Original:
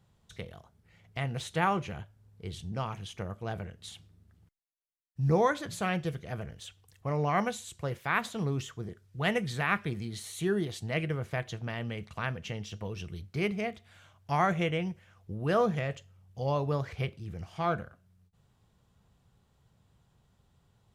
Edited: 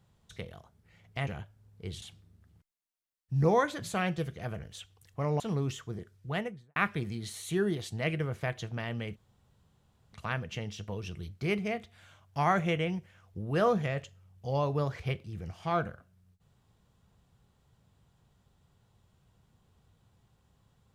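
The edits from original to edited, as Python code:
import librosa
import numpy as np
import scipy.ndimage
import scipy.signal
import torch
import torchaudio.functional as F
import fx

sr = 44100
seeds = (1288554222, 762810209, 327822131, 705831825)

y = fx.studio_fade_out(x, sr, start_s=9.03, length_s=0.63)
y = fx.edit(y, sr, fx.cut(start_s=1.27, length_s=0.6),
    fx.cut(start_s=2.62, length_s=1.27),
    fx.cut(start_s=7.27, length_s=1.03),
    fx.insert_room_tone(at_s=12.06, length_s=0.97), tone=tone)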